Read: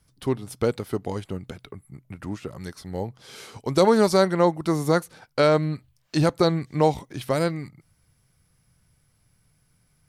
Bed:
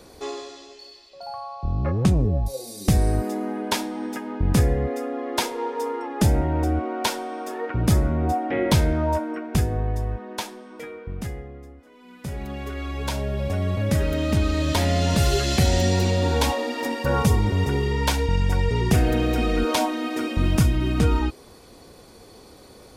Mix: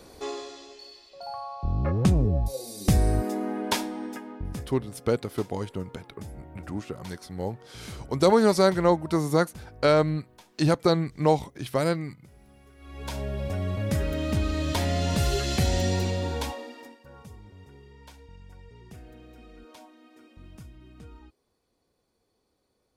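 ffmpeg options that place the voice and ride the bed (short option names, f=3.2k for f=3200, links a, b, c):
-filter_complex "[0:a]adelay=4450,volume=-1.5dB[a];[1:a]volume=16dB,afade=t=out:st=3.76:d=0.9:silence=0.0891251,afade=t=in:st=12.78:d=0.44:silence=0.125893,afade=t=out:st=15.93:d=1.06:silence=0.0749894[b];[a][b]amix=inputs=2:normalize=0"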